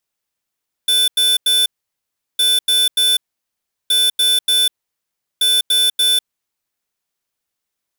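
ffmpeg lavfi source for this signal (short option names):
-f lavfi -i "aevalsrc='0.2*(2*lt(mod(3510*t,1),0.5)-1)*clip(min(mod(mod(t,1.51),0.29),0.2-mod(mod(t,1.51),0.29))/0.005,0,1)*lt(mod(t,1.51),0.87)':d=6.04:s=44100"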